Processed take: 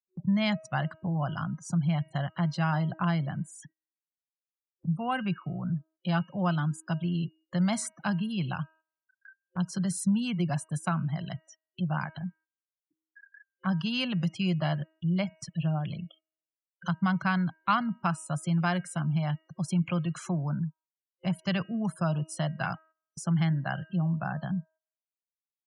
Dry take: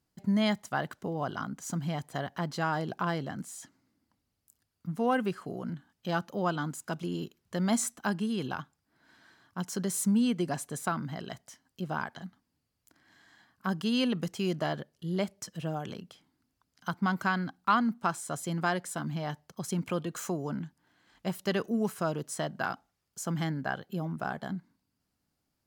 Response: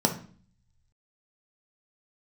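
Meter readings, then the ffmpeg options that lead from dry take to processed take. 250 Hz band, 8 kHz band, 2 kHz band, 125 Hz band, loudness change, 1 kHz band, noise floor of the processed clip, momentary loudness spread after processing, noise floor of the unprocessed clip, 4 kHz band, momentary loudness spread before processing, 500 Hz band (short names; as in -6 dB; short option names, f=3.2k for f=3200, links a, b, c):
+2.5 dB, -3.0 dB, +0.5 dB, +7.5 dB, +2.0 dB, -0.5 dB, under -85 dBFS, 9 LU, -81 dBFS, +1.0 dB, 12 LU, -4.0 dB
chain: -filter_complex "[0:a]afftfilt=real='re*gte(hypot(re,im),0.00631)':imag='im*gte(hypot(re,im),0.00631)':win_size=1024:overlap=0.75,highpass=76,lowshelf=f=200:t=q:w=3:g=8,bandreject=f=317.9:t=h:w=4,bandreject=f=635.8:t=h:w=4,bandreject=f=953.7:t=h:w=4,bandreject=f=1.2716k:t=h:w=4,bandreject=f=1.5895k:t=h:w=4,bandreject=f=1.9074k:t=h:w=4,bandreject=f=2.2253k:t=h:w=4,bandreject=f=2.5432k:t=h:w=4,bandreject=f=2.8611k:t=h:w=4,acrossover=split=190|3000[a][b][c];[a]acompressor=threshold=-35dB:ratio=4[d];[d][b][c]amix=inputs=3:normalize=0,superequalizer=7b=0.316:12b=1.78:15b=0.562,aresample=22050,aresample=44100,acompressor=mode=upward:threshold=-37dB:ratio=2.5,agate=range=-13dB:threshold=-54dB:ratio=16:detection=peak"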